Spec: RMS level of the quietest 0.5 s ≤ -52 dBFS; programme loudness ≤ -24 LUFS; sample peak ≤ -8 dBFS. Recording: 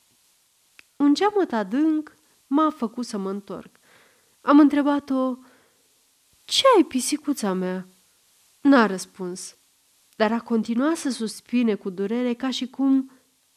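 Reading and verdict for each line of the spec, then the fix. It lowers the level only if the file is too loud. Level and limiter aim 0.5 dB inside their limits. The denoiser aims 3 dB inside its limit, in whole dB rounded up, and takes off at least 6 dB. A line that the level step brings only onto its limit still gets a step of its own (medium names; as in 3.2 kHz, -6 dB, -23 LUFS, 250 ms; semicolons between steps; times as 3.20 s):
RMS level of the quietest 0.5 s -63 dBFS: pass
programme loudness -22.5 LUFS: fail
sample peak -5.5 dBFS: fail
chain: trim -2 dB; peak limiter -8.5 dBFS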